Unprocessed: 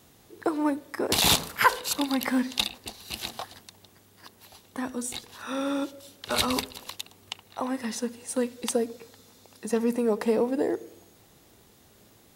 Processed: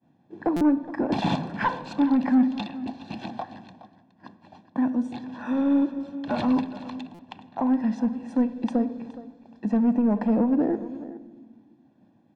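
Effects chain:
downward expander −47 dBFS
high-pass filter 170 Hz 12 dB per octave
parametric band 240 Hz +12.5 dB 2.4 octaves
comb filter 1.2 ms, depth 75%
in parallel at −1 dB: downward compressor, threshold −33 dBFS, peak gain reduction 22 dB
on the sum: soft clipping −11 dBFS, distortion −16 dB
head-to-tape spacing loss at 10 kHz 38 dB
single-tap delay 418 ms −16 dB
on a send at −14.5 dB: convolution reverb RT60 1.5 s, pre-delay 3 ms
on the sum: buffer that repeats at 0:00.56/0:07.14, samples 256, times 8
level −2 dB

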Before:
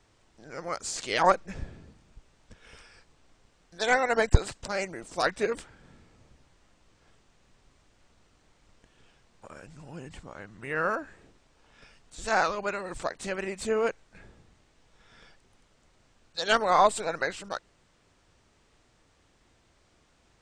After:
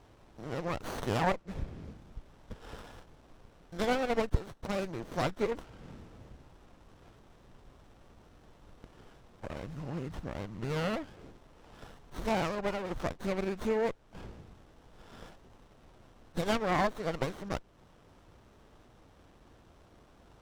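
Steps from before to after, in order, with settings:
Butterworth low-pass 6,800 Hz
downward compressor 2 to 1, threshold −43 dBFS, peak gain reduction 17.5 dB
windowed peak hold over 17 samples
level +7.5 dB

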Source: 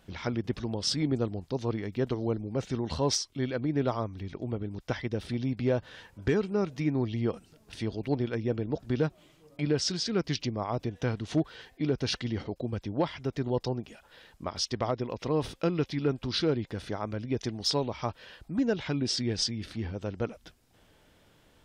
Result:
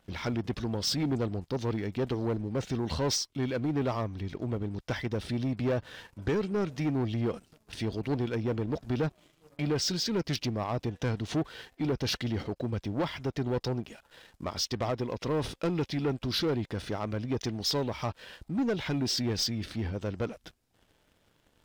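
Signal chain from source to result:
leveller curve on the samples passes 2
level −5 dB

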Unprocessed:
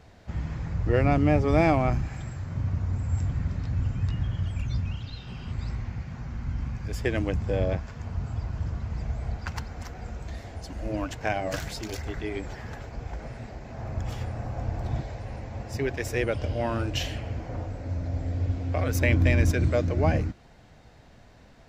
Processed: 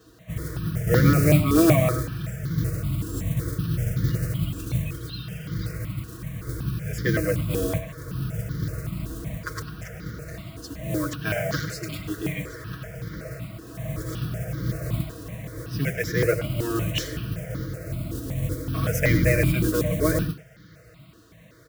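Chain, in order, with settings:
sub-octave generator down 1 octave, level 0 dB
high-pass filter 68 Hz 24 dB per octave
comb filter 6.3 ms, depth 95%
noise that follows the level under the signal 17 dB
Butterworth band-reject 850 Hz, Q 2
far-end echo of a speakerphone 100 ms, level −9 dB
step-sequenced phaser 5.3 Hz 590–2,600 Hz
level +3.5 dB

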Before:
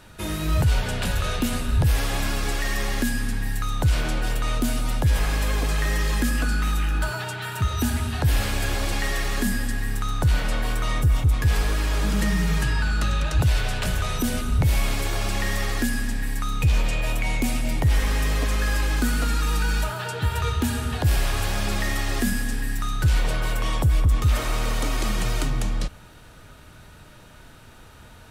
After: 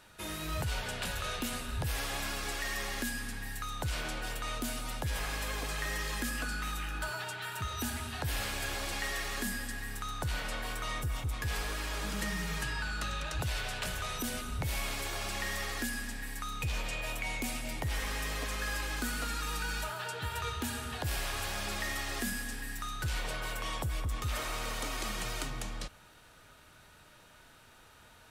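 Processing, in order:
low-shelf EQ 370 Hz −10 dB
level −6.5 dB

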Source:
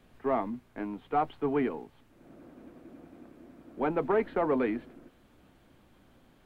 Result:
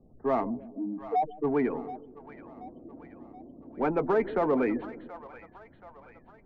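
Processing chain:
0:00.68–0:01.44: expanding power law on the bin magnitudes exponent 3.3
low-pass that shuts in the quiet parts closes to 530 Hz, open at −28.5 dBFS
gate on every frequency bin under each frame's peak −30 dB strong
in parallel at −6.5 dB: soft clipping −30.5 dBFS, distortion −8 dB
on the sum: echo with a time of its own for lows and highs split 600 Hz, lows 152 ms, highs 728 ms, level −14 dB

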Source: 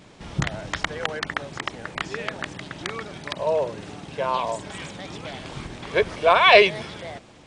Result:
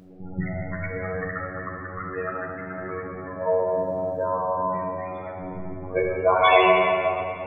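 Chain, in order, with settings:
0:04.94–0:05.37: RIAA equalisation recording
low-pass that shuts in the quiet parts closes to 1,400 Hz, open at −14 dBFS
0:02.17–0:02.80: parametric band 1,100 Hz +4.5 dB 1.9 octaves
in parallel at −1.5 dB: downward compressor, threshold −34 dBFS, peak gain reduction 23 dB
on the sum: spectral peaks only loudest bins 16
0:03.67–0:04.37: surface crackle 450 per second −55 dBFS
phases set to zero 92.7 Hz
rectangular room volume 180 cubic metres, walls hard, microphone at 0.59 metres
level −2 dB

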